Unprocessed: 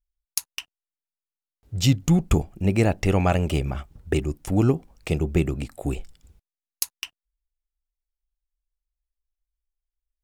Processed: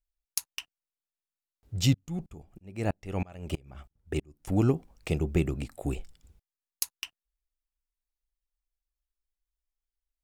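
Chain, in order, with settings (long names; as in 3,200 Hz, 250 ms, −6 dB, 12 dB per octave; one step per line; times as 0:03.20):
0:01.94–0:04.49: tremolo with a ramp in dB swelling 3.1 Hz, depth 31 dB
level −4.5 dB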